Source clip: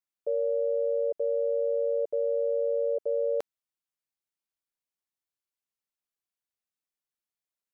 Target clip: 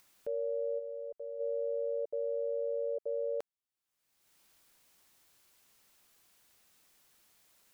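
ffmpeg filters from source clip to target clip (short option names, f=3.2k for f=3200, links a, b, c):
-filter_complex "[0:a]asplit=3[a][b][c];[a]afade=t=out:st=0.78:d=0.02[d];[b]equalizer=f=260:w=0.47:g=-10.5,afade=t=in:st=0.78:d=0.02,afade=t=out:st=1.39:d=0.02[e];[c]afade=t=in:st=1.39:d=0.02[f];[d][e][f]amix=inputs=3:normalize=0,acompressor=mode=upward:threshold=-35dB:ratio=2.5,volume=-7dB"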